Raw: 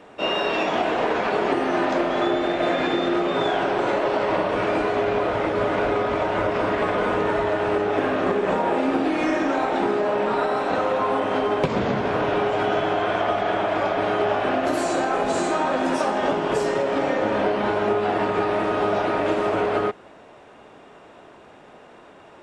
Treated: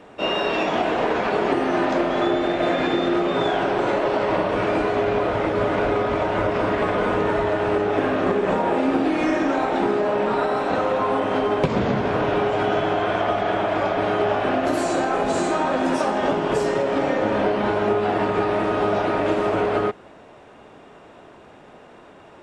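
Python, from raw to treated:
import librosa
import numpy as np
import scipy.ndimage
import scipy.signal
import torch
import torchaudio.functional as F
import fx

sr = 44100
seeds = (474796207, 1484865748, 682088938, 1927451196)

y = fx.low_shelf(x, sr, hz=250.0, db=4.5)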